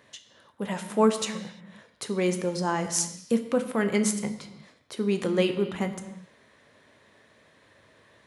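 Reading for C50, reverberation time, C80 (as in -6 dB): 10.0 dB, not exponential, 11.5 dB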